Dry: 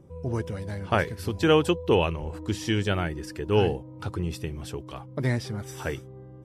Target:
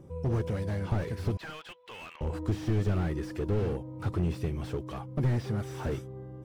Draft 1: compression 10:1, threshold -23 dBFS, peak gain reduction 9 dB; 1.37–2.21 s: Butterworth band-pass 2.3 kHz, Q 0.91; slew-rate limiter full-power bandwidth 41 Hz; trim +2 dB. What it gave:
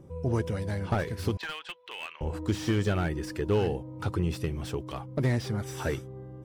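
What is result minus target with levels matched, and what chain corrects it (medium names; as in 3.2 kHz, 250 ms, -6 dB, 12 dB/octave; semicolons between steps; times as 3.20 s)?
slew-rate limiter: distortion -9 dB
compression 10:1, threshold -23 dBFS, peak gain reduction 9 dB; 1.37–2.21 s: Butterworth band-pass 2.3 kHz, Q 0.91; slew-rate limiter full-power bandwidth 12 Hz; trim +2 dB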